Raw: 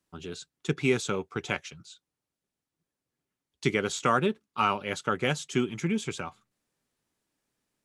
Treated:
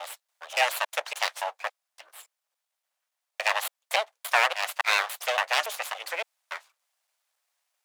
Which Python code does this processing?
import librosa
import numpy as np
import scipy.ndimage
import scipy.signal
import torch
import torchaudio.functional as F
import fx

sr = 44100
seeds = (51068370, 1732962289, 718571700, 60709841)

y = fx.block_reorder(x, sr, ms=283.0, group=2)
y = np.abs(y)
y = scipy.signal.sosfilt(scipy.signal.butter(6, 600.0, 'highpass', fs=sr, output='sos'), y)
y = y * 10.0 ** (7.5 / 20.0)